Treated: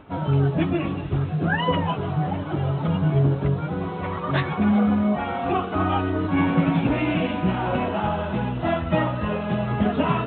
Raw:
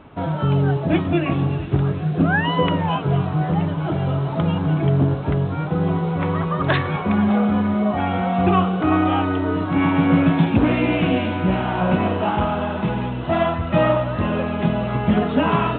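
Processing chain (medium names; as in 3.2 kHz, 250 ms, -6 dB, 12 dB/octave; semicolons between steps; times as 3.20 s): plain phase-vocoder stretch 0.65×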